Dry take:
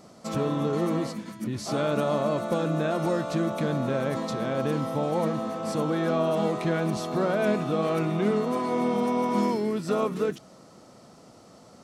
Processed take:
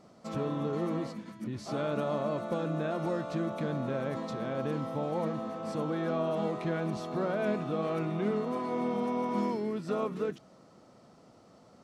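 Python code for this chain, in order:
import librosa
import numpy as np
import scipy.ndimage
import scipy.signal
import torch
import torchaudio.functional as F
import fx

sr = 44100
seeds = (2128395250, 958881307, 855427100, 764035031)

y = fx.high_shelf(x, sr, hz=6300.0, db=-11.5)
y = y * librosa.db_to_amplitude(-6.0)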